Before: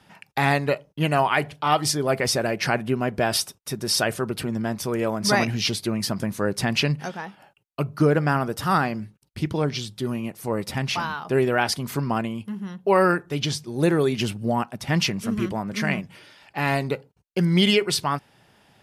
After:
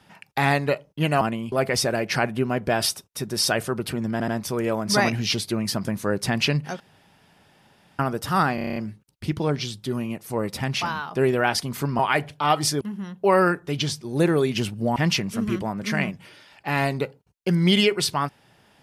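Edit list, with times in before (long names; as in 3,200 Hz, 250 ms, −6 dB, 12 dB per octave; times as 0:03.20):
0:01.21–0:02.03: swap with 0:12.13–0:12.44
0:04.63: stutter 0.08 s, 3 plays
0:07.15–0:08.34: fill with room tone
0:08.90: stutter 0.03 s, 8 plays
0:14.59–0:14.86: remove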